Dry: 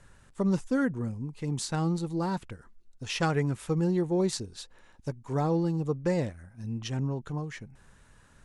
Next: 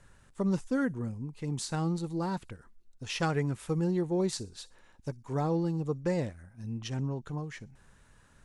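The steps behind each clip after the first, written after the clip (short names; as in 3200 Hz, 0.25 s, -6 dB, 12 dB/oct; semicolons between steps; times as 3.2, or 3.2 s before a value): thin delay 61 ms, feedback 32%, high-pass 5300 Hz, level -16.5 dB; gain -2.5 dB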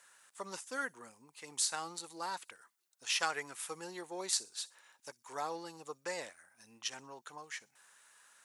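HPF 940 Hz 12 dB/oct; high shelf 7000 Hz +10.5 dB; gain +1 dB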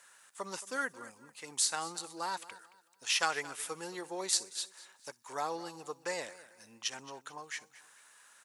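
feedback echo 0.222 s, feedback 32%, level -18 dB; gain +3 dB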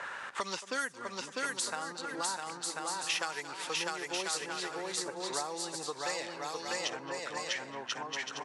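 low-pass opened by the level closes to 1400 Hz, open at -29 dBFS; bouncing-ball echo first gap 0.65 s, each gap 0.6×, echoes 5; three-band squash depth 100%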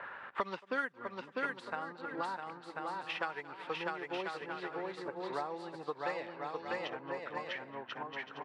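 air absorption 460 m; upward expander 1.5:1, over -58 dBFS; gain +4 dB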